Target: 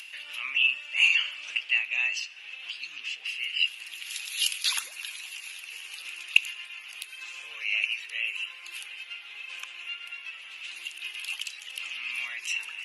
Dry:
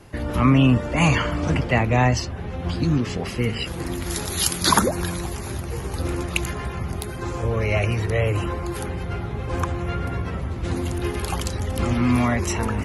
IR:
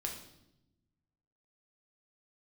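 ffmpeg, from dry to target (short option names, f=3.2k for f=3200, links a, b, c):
-filter_complex "[0:a]highpass=f=2.7k:t=q:w=8.3,acompressor=mode=upward:threshold=-25dB:ratio=2.5,asplit=2[a][b];[1:a]atrim=start_sample=2205,asetrate=23814,aresample=44100[c];[b][c]afir=irnorm=-1:irlink=0,volume=-19.5dB[d];[a][d]amix=inputs=2:normalize=0,volume=-10.5dB"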